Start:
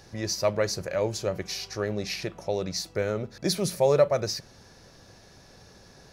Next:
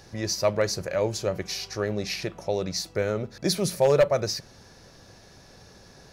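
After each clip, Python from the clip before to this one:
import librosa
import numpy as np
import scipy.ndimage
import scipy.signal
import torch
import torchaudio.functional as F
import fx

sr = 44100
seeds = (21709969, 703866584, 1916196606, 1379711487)

y = 10.0 ** (-13.0 / 20.0) * (np.abs((x / 10.0 ** (-13.0 / 20.0) + 3.0) % 4.0 - 2.0) - 1.0)
y = F.gain(torch.from_numpy(y), 1.5).numpy()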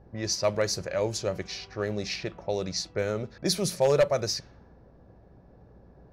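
y = fx.env_lowpass(x, sr, base_hz=650.0, full_db=-23.0)
y = fx.peak_eq(y, sr, hz=6100.0, db=3.0, octaves=1.6)
y = fx.add_hum(y, sr, base_hz=60, snr_db=28)
y = F.gain(torch.from_numpy(y), -2.5).numpy()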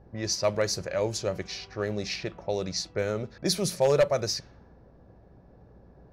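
y = x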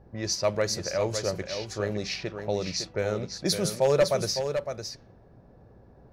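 y = x + 10.0 ** (-7.5 / 20.0) * np.pad(x, (int(558 * sr / 1000.0), 0))[:len(x)]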